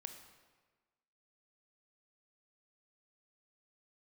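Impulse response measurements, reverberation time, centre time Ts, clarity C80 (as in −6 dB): 1.4 s, 24 ms, 9.0 dB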